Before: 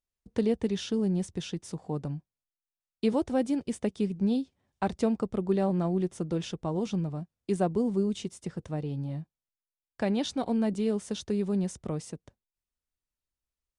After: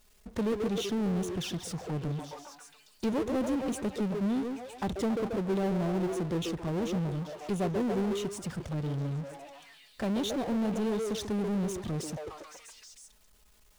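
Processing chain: repeats whose band climbs or falls 138 ms, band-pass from 430 Hz, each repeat 0.7 oct, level -3.5 dB; touch-sensitive flanger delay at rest 4.8 ms, full sweep at -26.5 dBFS; power-law waveshaper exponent 0.5; trim -7 dB

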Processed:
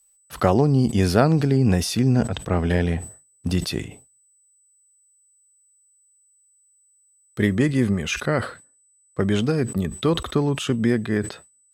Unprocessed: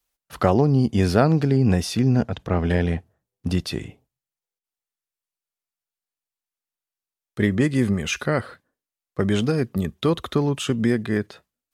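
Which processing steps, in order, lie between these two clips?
treble shelf 6.6 kHz +6.5 dB, from 7.62 s -2.5 dB; whistle 8 kHz -58 dBFS; decay stretcher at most 130 dB/s

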